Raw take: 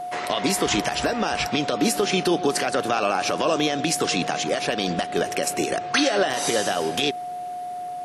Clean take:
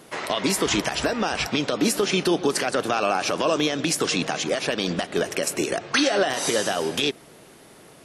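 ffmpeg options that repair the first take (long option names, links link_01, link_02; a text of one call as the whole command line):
ffmpeg -i in.wav -af "bandreject=frequency=720:width=30" out.wav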